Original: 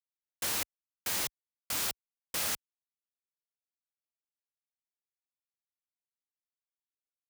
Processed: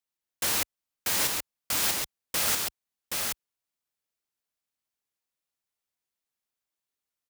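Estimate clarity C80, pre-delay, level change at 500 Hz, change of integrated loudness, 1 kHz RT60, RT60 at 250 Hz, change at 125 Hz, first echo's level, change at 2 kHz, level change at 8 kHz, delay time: no reverb, no reverb, +7.0 dB, +6.0 dB, no reverb, no reverb, +7.0 dB, -3.5 dB, +7.0 dB, +7.0 dB, 774 ms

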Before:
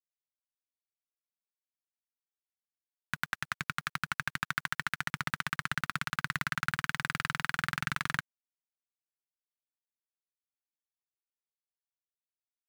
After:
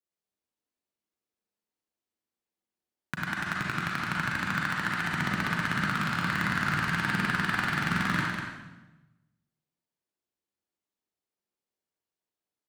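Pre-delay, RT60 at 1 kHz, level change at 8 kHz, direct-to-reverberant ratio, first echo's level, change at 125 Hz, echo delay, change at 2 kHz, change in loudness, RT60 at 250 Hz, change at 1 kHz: 35 ms, 1.0 s, +1.0 dB, -4.5 dB, -7.0 dB, +9.0 dB, 198 ms, +5.0 dB, +5.5 dB, 1.3 s, +6.0 dB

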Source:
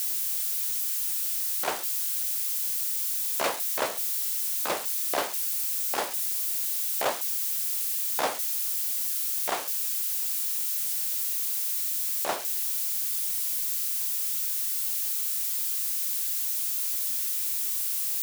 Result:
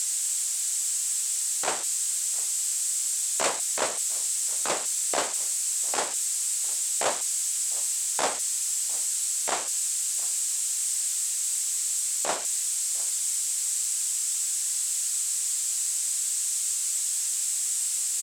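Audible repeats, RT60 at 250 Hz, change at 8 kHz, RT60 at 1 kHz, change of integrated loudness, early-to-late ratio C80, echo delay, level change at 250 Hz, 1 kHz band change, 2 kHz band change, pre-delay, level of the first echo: 1, no reverb, +8.5 dB, no reverb, +1.0 dB, no reverb, 705 ms, 0.0 dB, 0.0 dB, +0.5 dB, no reverb, -23.0 dB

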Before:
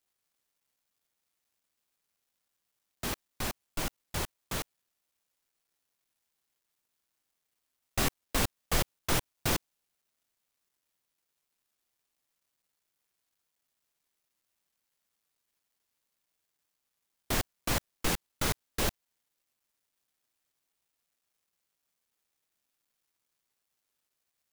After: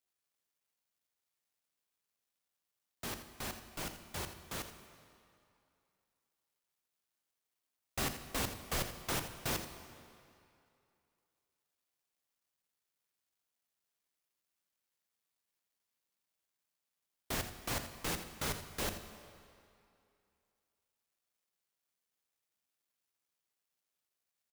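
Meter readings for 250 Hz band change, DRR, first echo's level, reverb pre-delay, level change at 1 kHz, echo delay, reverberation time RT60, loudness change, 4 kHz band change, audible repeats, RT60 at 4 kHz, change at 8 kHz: -6.5 dB, 7.5 dB, -12.0 dB, 32 ms, -5.5 dB, 83 ms, 2.6 s, -6.5 dB, -6.0 dB, 1, 2.1 s, -6.0 dB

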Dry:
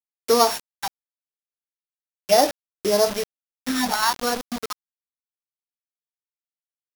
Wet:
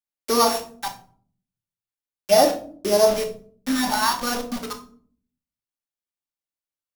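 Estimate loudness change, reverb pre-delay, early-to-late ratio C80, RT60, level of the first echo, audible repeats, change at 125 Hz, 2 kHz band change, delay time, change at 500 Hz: +0.5 dB, 3 ms, 15.5 dB, 0.50 s, no echo, no echo, no reading, -0.5 dB, no echo, +1.5 dB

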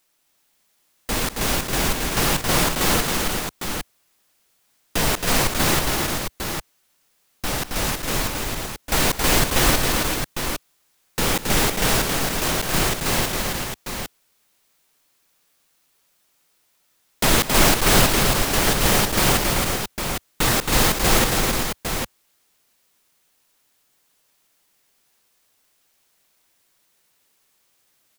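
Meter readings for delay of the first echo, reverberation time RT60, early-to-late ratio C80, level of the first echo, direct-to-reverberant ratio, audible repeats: 205 ms, no reverb, no reverb, -15.5 dB, no reverb, 4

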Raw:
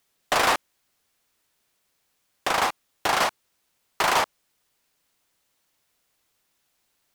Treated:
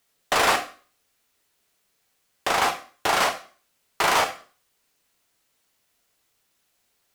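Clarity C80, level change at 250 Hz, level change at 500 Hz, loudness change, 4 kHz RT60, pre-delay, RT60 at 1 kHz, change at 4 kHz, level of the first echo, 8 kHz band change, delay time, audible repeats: 16.0 dB, +1.0 dB, +1.5 dB, +1.5 dB, 0.40 s, 5 ms, 0.40 s, +1.5 dB, no echo, +2.0 dB, no echo, no echo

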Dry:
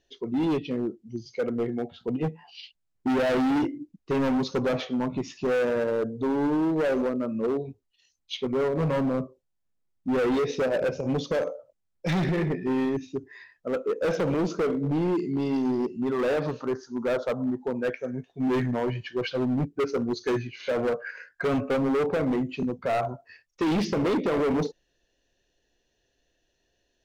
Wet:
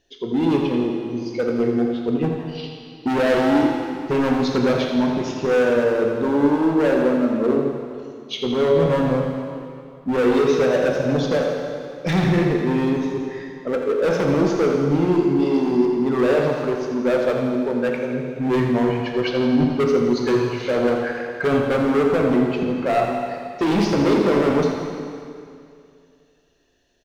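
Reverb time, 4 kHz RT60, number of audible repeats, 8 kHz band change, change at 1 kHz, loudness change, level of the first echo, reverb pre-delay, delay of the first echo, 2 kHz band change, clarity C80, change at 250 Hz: 2.4 s, 2.2 s, 2, no reading, +7.5 dB, +7.0 dB, -8.5 dB, 7 ms, 84 ms, +7.5 dB, 2.5 dB, +7.5 dB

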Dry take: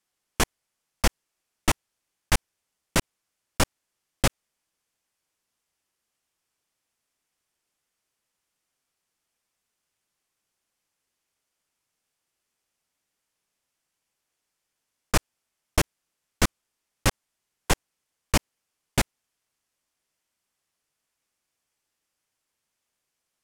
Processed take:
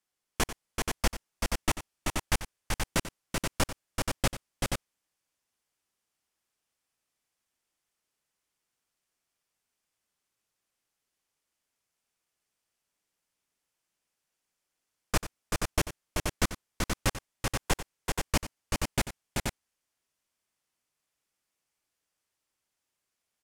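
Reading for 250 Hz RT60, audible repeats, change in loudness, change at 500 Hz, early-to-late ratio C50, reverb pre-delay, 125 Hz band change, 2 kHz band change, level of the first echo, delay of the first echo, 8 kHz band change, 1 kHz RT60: no reverb, 3, -5.0 dB, -3.0 dB, no reverb, no reverb, -3.0 dB, -3.0 dB, -13.5 dB, 91 ms, -3.0 dB, no reverb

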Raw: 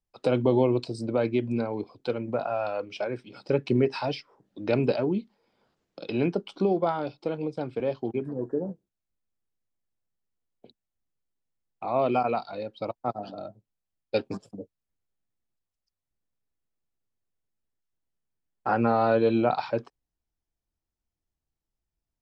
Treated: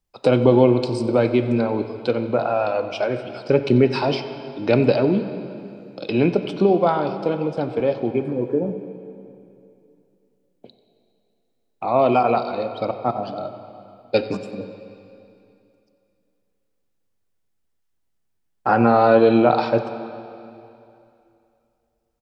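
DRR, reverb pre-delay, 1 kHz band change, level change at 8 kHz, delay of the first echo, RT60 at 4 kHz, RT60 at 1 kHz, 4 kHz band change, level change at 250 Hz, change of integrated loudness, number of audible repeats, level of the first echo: 8.0 dB, 6 ms, +8.0 dB, no reading, 91 ms, 2.5 s, 2.7 s, +8.0 dB, +8.0 dB, +8.0 dB, 1, -19.0 dB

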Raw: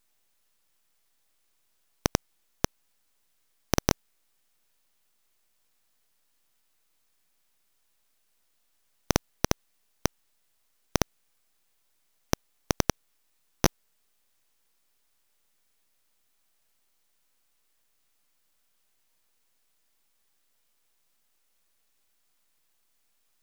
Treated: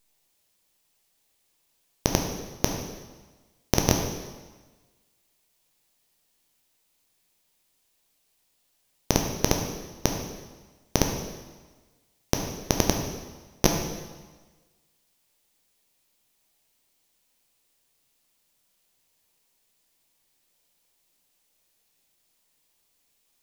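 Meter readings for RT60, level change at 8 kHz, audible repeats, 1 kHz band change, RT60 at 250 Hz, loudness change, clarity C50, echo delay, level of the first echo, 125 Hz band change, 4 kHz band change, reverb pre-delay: 1.3 s, +4.5 dB, no echo, +2.0 dB, 1.3 s, +2.5 dB, 4.5 dB, no echo, no echo, +4.5 dB, +4.0 dB, 5 ms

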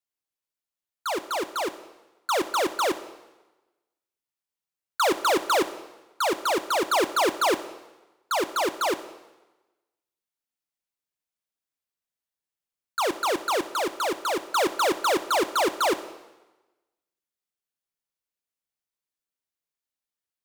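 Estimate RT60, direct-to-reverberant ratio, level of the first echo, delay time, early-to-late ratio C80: 1.1 s, 11.5 dB, no echo, no echo, 15.5 dB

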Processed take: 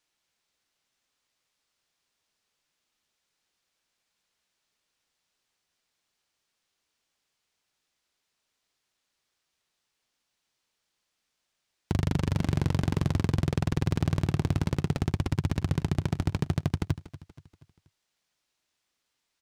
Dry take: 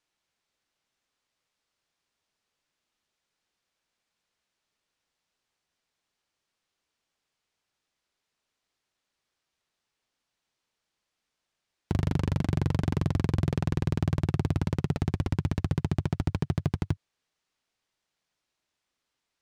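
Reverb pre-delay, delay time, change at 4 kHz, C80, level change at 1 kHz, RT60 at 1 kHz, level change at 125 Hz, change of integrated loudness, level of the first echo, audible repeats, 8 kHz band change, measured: no reverb, 239 ms, +3.5 dB, no reverb, +0.5 dB, no reverb, 0.0 dB, 0.0 dB, -16.5 dB, 3, no reading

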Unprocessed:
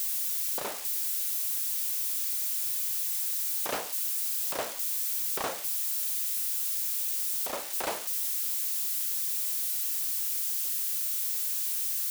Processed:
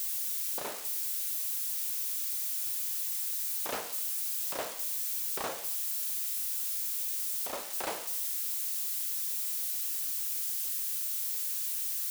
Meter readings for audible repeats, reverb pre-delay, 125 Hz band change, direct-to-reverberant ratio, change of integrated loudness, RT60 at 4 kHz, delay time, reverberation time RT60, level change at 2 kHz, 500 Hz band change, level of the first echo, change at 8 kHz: no echo, 9 ms, no reading, 9.5 dB, -3.0 dB, 0.70 s, no echo, 0.70 s, -3.0 dB, -3.0 dB, no echo, -3.0 dB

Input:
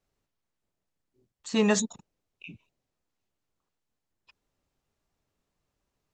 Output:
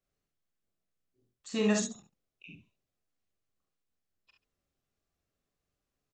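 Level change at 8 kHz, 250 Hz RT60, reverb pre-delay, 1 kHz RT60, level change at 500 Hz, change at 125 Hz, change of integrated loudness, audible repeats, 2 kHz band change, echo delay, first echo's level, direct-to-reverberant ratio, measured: -5.0 dB, no reverb, no reverb, no reverb, -4.5 dB, -3.0 dB, -4.0 dB, 2, -5.0 dB, 43 ms, -5.0 dB, no reverb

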